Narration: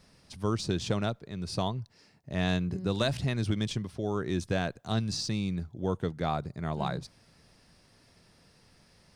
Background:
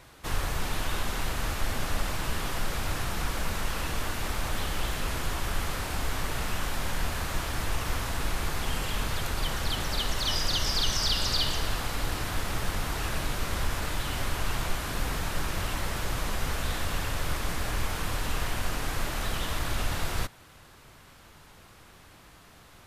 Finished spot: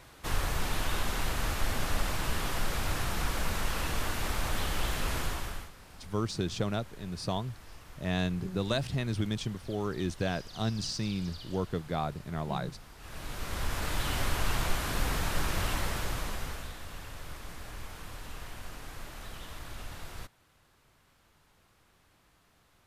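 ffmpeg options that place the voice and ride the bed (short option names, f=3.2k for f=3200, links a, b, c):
-filter_complex "[0:a]adelay=5700,volume=-2dB[a];[1:a]volume=19.5dB,afade=t=out:st=5.19:d=0.52:silence=0.105925,afade=t=in:st=12.98:d=1.09:silence=0.0944061,afade=t=out:st=15.72:d=1.02:silence=0.223872[b];[a][b]amix=inputs=2:normalize=0"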